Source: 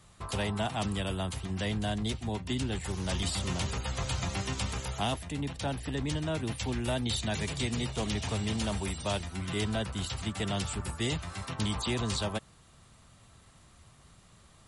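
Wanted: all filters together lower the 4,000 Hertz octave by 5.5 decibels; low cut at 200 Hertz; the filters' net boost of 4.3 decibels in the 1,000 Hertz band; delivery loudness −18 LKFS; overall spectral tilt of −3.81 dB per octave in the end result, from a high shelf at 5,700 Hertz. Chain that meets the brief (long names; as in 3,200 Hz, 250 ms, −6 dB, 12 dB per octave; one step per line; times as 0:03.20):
high-pass filter 200 Hz
parametric band 1,000 Hz +6 dB
parametric band 4,000 Hz −9 dB
high-shelf EQ 5,700 Hz +4 dB
level +17 dB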